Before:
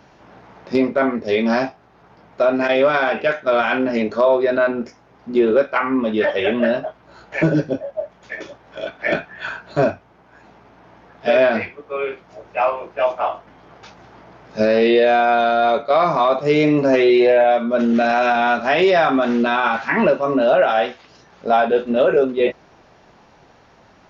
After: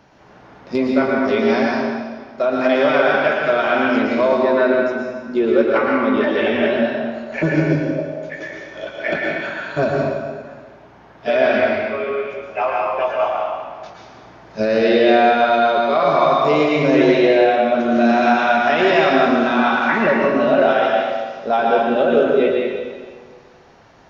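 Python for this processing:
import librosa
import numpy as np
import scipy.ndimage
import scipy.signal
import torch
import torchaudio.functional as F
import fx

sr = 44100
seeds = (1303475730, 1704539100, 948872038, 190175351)

y = fx.rev_plate(x, sr, seeds[0], rt60_s=1.6, hf_ratio=0.9, predelay_ms=100, drr_db=-2.0)
y = y * 10.0 ** (-2.5 / 20.0)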